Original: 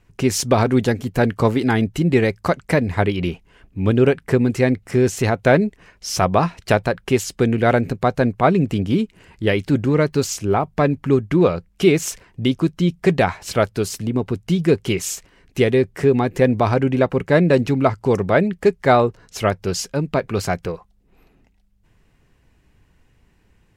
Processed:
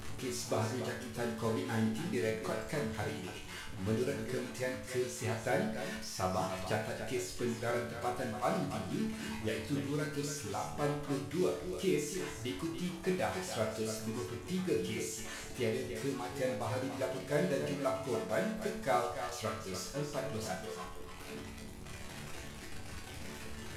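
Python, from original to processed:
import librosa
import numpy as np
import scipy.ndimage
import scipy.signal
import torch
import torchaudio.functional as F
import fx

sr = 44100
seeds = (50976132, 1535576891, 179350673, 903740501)

y = fx.delta_mod(x, sr, bps=64000, step_db=-18.5)
y = fx.dereverb_blind(y, sr, rt60_s=1.8)
y = fx.resonator_bank(y, sr, root=38, chord='major', decay_s=0.66)
y = y + 10.0 ** (-9.0 / 20.0) * np.pad(y, (int(287 * sr / 1000.0), 0))[:len(y)]
y = F.gain(torch.from_numpy(y), -1.5).numpy()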